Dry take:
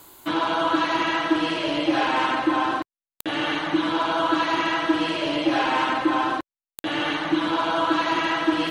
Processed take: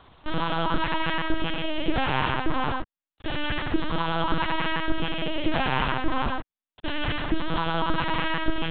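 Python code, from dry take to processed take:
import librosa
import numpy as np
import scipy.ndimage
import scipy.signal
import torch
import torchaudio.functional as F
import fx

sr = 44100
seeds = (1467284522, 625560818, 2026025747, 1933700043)

y = fx.lpc_vocoder(x, sr, seeds[0], excitation='pitch_kept', order=8)
y = fx.dynamic_eq(y, sr, hz=840.0, q=0.82, threshold_db=-34.0, ratio=4.0, max_db=-4)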